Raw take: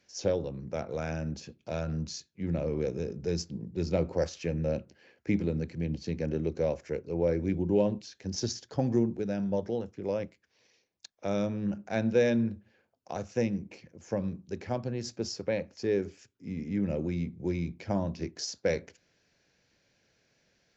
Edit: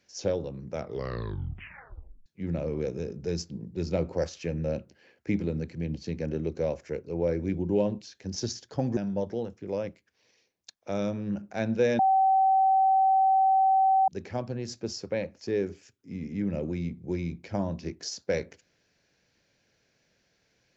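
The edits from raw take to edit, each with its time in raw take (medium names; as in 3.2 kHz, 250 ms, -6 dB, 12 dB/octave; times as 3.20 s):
0.77 s: tape stop 1.49 s
8.97–9.33 s: delete
12.35–14.44 s: bleep 768 Hz -18.5 dBFS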